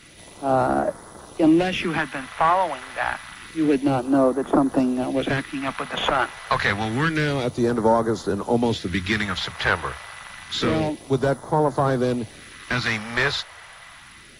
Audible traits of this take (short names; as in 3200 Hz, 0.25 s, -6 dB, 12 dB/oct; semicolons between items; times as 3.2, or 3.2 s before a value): phasing stages 2, 0.28 Hz, lowest notch 250–2500 Hz; AAC